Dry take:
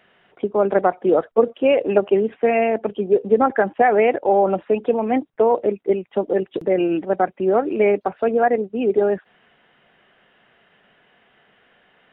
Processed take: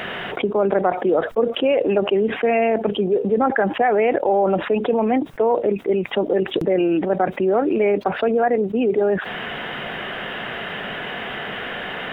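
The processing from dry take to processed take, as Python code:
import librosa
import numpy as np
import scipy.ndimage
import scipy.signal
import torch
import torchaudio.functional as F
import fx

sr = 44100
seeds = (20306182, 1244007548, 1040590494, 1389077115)

y = fx.env_flatten(x, sr, amount_pct=70)
y = F.gain(torch.from_numpy(y), -5.0).numpy()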